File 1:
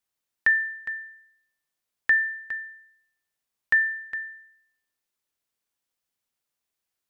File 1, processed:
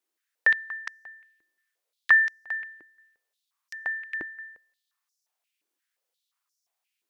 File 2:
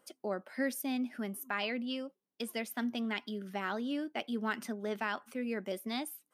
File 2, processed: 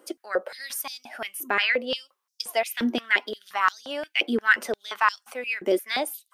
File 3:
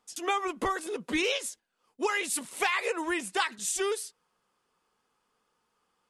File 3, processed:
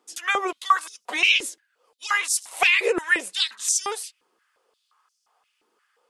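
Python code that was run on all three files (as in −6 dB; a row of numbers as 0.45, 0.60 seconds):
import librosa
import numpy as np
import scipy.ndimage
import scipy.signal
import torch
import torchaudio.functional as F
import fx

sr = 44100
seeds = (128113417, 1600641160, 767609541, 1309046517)

y = fx.filter_held_highpass(x, sr, hz=5.7, low_hz=330.0, high_hz=5600.0)
y = y * 10.0 ** (-6 / 20.0) / np.max(np.abs(y))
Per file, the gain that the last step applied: −0.5, +9.5, +4.0 decibels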